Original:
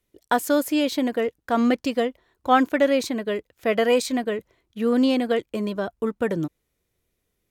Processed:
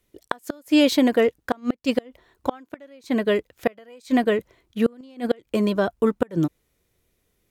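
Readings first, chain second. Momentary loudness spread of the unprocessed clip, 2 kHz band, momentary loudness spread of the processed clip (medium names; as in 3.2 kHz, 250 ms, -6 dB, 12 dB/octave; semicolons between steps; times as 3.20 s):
9 LU, -2.0 dB, 14 LU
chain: inverted gate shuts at -13 dBFS, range -32 dB; trim +5.5 dB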